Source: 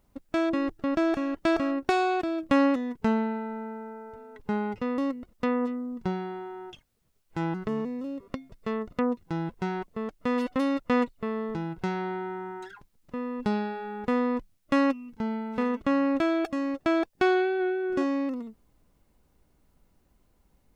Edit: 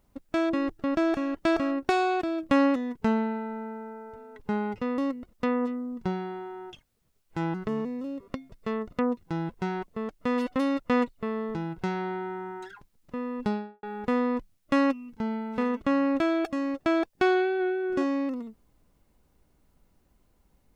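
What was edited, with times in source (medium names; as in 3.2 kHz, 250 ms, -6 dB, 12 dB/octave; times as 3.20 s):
13.41–13.83 s: studio fade out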